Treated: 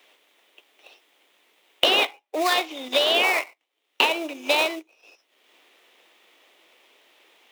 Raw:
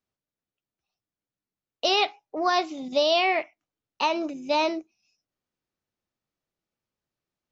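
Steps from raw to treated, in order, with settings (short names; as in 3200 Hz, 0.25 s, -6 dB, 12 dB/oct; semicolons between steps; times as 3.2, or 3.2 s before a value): band shelf 2600 Hz +14 dB 1.2 oct; in parallel at -4.5 dB: sample-rate reducer 3100 Hz, jitter 20%; on the sum: HPF 350 Hz 24 dB/oct; three-band squash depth 100%; gain -5.5 dB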